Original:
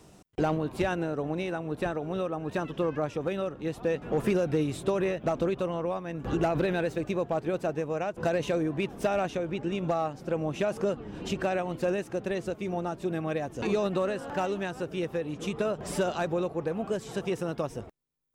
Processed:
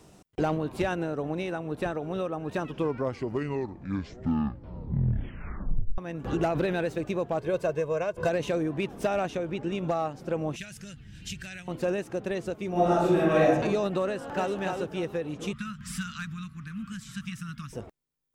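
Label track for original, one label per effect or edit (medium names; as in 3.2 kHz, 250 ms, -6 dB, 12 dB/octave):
2.590000	2.590000	tape stop 3.39 s
7.390000	8.290000	comb 1.9 ms
10.560000	11.680000	FFT filter 130 Hz 0 dB, 440 Hz -28 dB, 720 Hz -25 dB, 1.1 kHz -25 dB, 1.6 kHz -4 dB, 7.3 kHz +4 dB
12.710000	13.480000	reverb throw, RT60 0.92 s, DRR -9 dB
14.060000	14.570000	echo throw 290 ms, feedback 25%, level -4 dB
15.530000	17.730000	elliptic band-stop 220–1300 Hz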